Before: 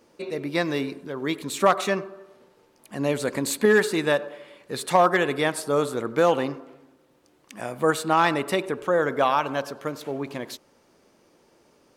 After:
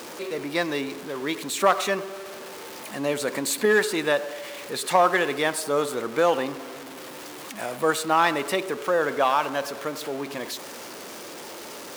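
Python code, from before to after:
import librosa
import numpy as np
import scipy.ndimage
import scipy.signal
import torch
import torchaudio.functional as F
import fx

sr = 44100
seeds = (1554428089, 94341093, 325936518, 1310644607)

y = x + 0.5 * 10.0 ** (-32.0 / 20.0) * np.sign(x)
y = fx.highpass(y, sr, hz=370.0, slope=6)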